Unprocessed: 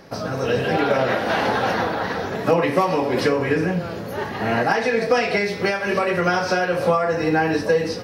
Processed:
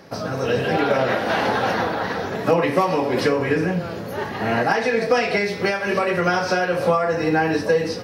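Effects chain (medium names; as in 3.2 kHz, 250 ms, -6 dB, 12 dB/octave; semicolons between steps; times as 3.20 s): high-pass 60 Hz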